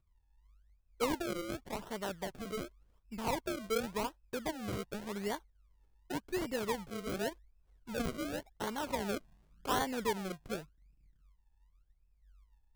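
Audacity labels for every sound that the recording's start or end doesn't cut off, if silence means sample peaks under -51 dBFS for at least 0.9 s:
1.000000	10.640000	sound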